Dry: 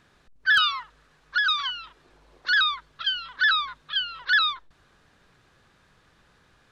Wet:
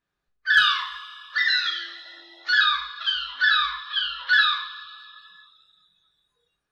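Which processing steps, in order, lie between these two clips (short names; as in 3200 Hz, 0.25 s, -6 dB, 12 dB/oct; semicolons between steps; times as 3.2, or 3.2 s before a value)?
1.36–2.48 frequency shift +290 Hz; two-slope reverb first 0.53 s, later 3.1 s, from -18 dB, DRR -3.5 dB; spectral noise reduction 23 dB; gain -3 dB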